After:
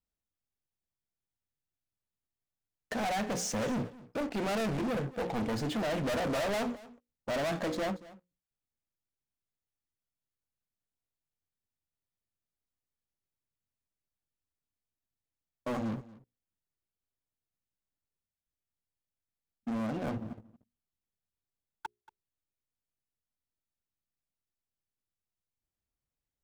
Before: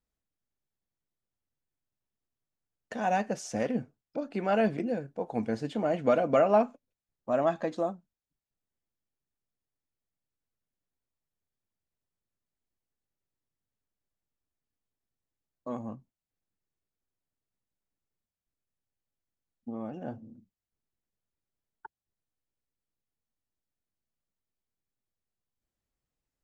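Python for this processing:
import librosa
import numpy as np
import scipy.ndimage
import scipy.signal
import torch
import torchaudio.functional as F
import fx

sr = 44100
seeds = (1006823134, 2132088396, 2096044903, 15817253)

p1 = fx.peak_eq(x, sr, hz=68.0, db=4.5, octaves=2.1)
p2 = fx.hum_notches(p1, sr, base_hz=60, count=9)
p3 = fx.leveller(p2, sr, passes=3)
p4 = 10.0 ** (-30.5 / 20.0) * np.tanh(p3 / 10.0 ** (-30.5 / 20.0))
y = p4 + fx.echo_single(p4, sr, ms=231, db=-19.5, dry=0)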